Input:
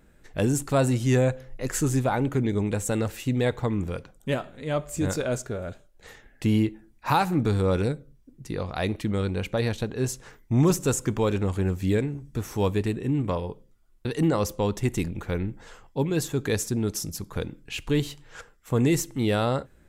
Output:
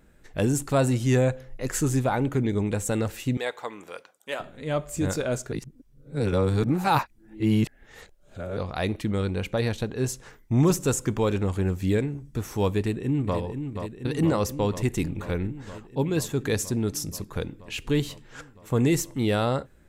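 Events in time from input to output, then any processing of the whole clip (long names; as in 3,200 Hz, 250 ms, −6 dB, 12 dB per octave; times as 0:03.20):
0:03.37–0:04.40: high-pass filter 640 Hz
0:05.52–0:08.57: reverse
0:12.79–0:13.38: delay throw 480 ms, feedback 80%, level −7.5 dB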